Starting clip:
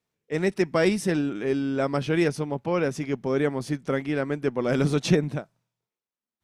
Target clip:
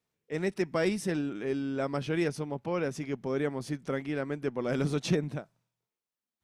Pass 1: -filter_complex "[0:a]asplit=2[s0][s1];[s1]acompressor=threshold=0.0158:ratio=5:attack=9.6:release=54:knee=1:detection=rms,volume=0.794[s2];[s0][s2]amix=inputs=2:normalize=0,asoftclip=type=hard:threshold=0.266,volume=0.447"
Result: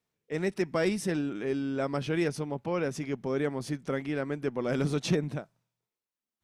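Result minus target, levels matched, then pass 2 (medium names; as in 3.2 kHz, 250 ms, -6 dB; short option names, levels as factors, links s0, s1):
compression: peak gain reduction -8 dB
-filter_complex "[0:a]asplit=2[s0][s1];[s1]acompressor=threshold=0.00501:ratio=5:attack=9.6:release=54:knee=1:detection=rms,volume=0.794[s2];[s0][s2]amix=inputs=2:normalize=0,asoftclip=type=hard:threshold=0.266,volume=0.447"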